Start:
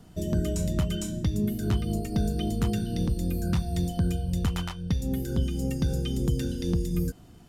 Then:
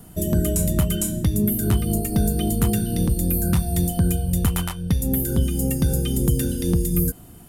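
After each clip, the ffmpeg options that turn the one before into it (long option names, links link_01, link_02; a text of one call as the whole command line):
ffmpeg -i in.wav -af "highshelf=frequency=7800:width_type=q:width=1.5:gain=12.5,volume=6dB" out.wav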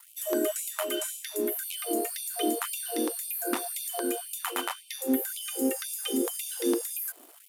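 ffmpeg -i in.wav -filter_complex "[0:a]aeval=exprs='sgn(val(0))*max(abs(val(0))-0.00447,0)':channel_layout=same,acrossover=split=2800[link_01][link_02];[link_02]acompressor=threshold=-32dB:ratio=4:attack=1:release=60[link_03];[link_01][link_03]amix=inputs=2:normalize=0,afftfilt=real='re*gte(b*sr/1024,230*pow(2300/230,0.5+0.5*sin(2*PI*1.9*pts/sr)))':imag='im*gte(b*sr/1024,230*pow(2300/230,0.5+0.5*sin(2*PI*1.9*pts/sr)))':win_size=1024:overlap=0.75,volume=2dB" out.wav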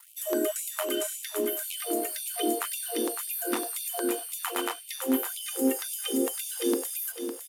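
ffmpeg -i in.wav -af "aecho=1:1:557|1114|1671:0.398|0.111|0.0312" out.wav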